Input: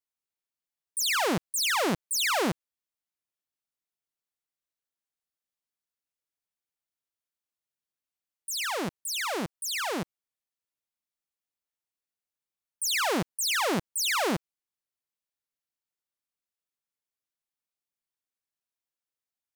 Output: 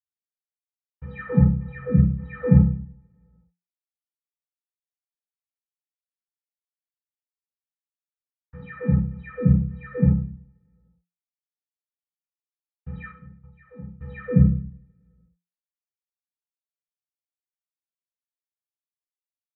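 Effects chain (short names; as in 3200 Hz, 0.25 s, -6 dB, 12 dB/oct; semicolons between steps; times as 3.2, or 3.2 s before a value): minimum comb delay 0.5 ms; rotary speaker horn 0.65 Hz; bit-crush 8-bit; 1.05–2.4 backlash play -30.5 dBFS; 13.03–13.82 flipped gate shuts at -34 dBFS, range -37 dB; compressor 1.5:1, threshold -39 dBFS, peak gain reduction 5.5 dB; metallic resonator 290 Hz, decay 0.25 s, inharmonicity 0.03; mistuned SSB -120 Hz 230–2200 Hz; upward compressor, threshold -59 dBFS; tilt -4.5 dB/oct; reverb RT60 0.50 s, pre-delay 46 ms, DRR -60 dB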